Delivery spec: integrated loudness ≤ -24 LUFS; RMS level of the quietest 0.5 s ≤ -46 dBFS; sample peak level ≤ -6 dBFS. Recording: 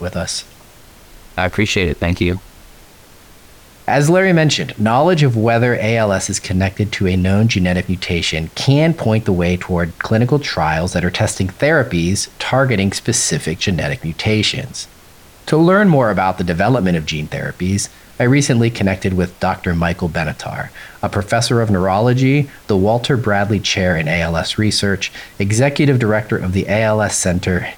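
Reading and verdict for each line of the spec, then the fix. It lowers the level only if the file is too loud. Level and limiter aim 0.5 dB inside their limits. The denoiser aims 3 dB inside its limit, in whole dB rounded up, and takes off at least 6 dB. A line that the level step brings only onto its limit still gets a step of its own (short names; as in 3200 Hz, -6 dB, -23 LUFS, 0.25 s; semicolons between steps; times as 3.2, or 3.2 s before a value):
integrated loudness -16.0 LUFS: fail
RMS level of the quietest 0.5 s -43 dBFS: fail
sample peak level -3.5 dBFS: fail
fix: gain -8.5 dB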